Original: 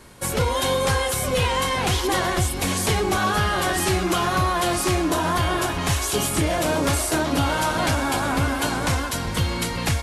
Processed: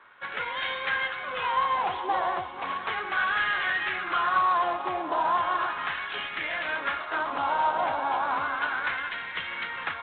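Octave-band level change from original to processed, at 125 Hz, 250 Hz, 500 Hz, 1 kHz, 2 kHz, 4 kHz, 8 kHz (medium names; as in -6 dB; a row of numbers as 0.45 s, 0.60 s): -29.0 dB, -19.0 dB, -11.0 dB, -1.5 dB, -1.0 dB, -9.5 dB, under -40 dB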